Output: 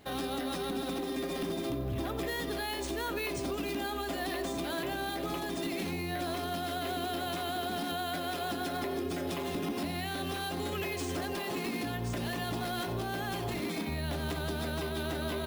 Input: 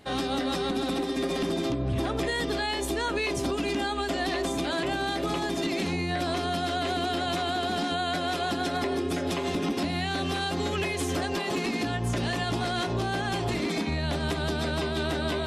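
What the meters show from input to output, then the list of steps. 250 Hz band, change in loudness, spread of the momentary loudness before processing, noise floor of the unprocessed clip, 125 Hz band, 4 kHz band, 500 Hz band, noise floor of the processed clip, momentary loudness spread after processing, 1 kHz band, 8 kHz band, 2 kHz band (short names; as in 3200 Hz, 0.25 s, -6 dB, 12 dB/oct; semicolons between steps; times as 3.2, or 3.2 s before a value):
-6.5 dB, -6.0 dB, 1 LU, -31 dBFS, -6.5 dB, -7.0 dB, -6.0 dB, -36 dBFS, 1 LU, -6.0 dB, -4.5 dB, -6.5 dB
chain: limiter -24 dBFS, peak gain reduction 3.5 dB; on a send: feedback echo 90 ms, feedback 53%, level -15 dB; on the sum: careless resampling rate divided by 3×, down none, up hold; gain -3.5 dB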